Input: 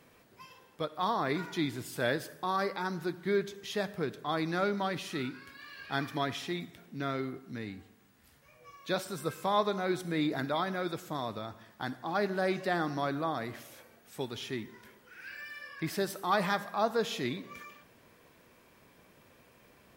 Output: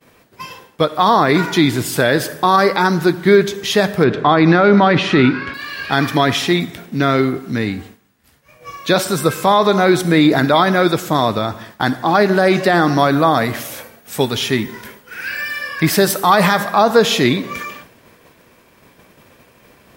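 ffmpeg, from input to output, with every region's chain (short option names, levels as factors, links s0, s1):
-filter_complex "[0:a]asettb=1/sr,asplit=3[s0][s1][s2];[s0]atrim=end=4.044[s3];[s1]atrim=start=4.04:end=5.54,asetpts=PTS-STARTPTS,afade=t=in:d=0.004:c=qsin,afade=t=out:st=1.496:d=0.004:c=qsin,lowpass=2900,acontrast=34[s4];[s2]atrim=start=5.536[s5];[s3][s4]acrossfade=d=0.004:c1=hsin:c2=qsin[s6];[s6][s5]acrossfade=d=0.004:c1=qsin:c2=hsin,asettb=1/sr,asplit=3[s7][s8][s9];[s7]atrim=end=12.984[s10];[s8]atrim=start=12.98:end=16.63,asetpts=PTS-STARTPTS,afade=t=in:d=0.004:c=qsin,afade=t=out:st=3.646:d=0.004:c=qsin,highshelf=f=10000:g=5.5,bandreject=f=350:w=10[s11];[s9]atrim=start=16.626[s12];[s10][s11]acrossfade=d=0.004:c1=hsin:c2=qsin[s13];[s13][s12]acrossfade=d=0.004:c1=qsin:c2=hsin,agate=range=0.0224:threshold=0.00224:ratio=3:detection=peak,alimiter=level_in=11.9:limit=0.891:release=50:level=0:latency=1,volume=0.891"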